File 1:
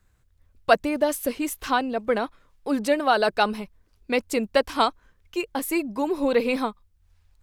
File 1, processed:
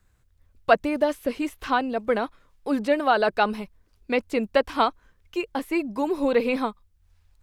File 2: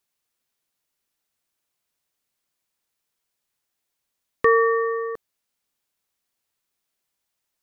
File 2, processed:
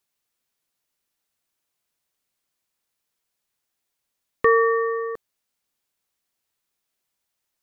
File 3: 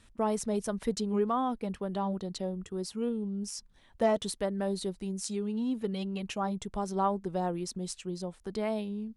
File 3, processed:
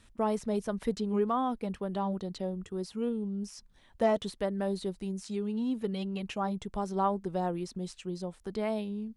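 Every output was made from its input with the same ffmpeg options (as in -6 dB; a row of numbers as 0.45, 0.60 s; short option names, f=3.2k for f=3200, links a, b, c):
-filter_complex "[0:a]acrossover=split=3800[a][b];[b]acompressor=threshold=-48dB:ratio=4:attack=1:release=60[c];[a][c]amix=inputs=2:normalize=0"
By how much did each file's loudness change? -0.5, 0.0, 0.0 LU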